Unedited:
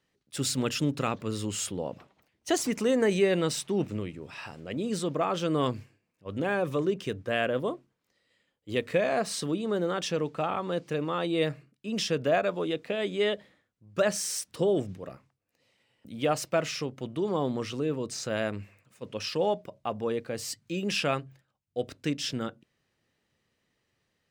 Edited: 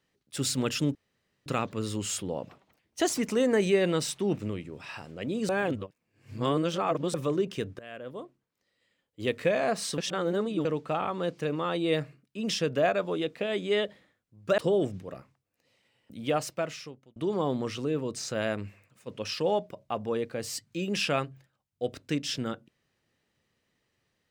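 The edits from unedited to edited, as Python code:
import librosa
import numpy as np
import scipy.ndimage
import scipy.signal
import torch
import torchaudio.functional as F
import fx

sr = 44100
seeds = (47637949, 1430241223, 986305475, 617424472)

y = fx.edit(x, sr, fx.insert_room_tone(at_s=0.95, length_s=0.51),
    fx.reverse_span(start_s=4.98, length_s=1.65),
    fx.fade_in_from(start_s=7.28, length_s=1.46, floor_db=-21.0),
    fx.reverse_span(start_s=9.47, length_s=0.67),
    fx.cut(start_s=14.07, length_s=0.46),
    fx.fade_out_span(start_s=16.18, length_s=0.93), tone=tone)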